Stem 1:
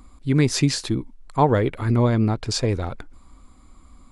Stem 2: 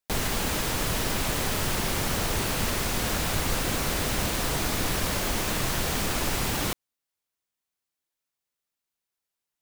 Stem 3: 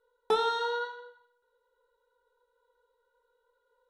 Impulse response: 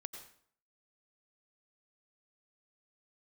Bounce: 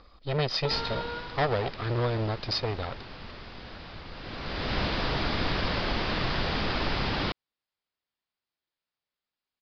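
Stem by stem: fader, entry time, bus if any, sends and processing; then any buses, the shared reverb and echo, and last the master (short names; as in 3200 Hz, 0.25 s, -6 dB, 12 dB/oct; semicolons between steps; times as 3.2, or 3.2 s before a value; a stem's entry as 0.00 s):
0.0 dB, 0.00 s, no send, minimum comb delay 1.6 ms; tone controls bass -7 dB, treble +10 dB; compressor 1.5:1, threshold -30 dBFS, peak gain reduction 5.5 dB
+0.5 dB, 0.60 s, no send, vibrato 0.38 Hz 46 cents; auto duck -15 dB, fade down 1.55 s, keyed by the first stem
-0.5 dB, 0.35 s, no send, compressor, threshold -32 dBFS, peak gain reduction 10.5 dB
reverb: off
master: Chebyshev low-pass 5000 Hz, order 6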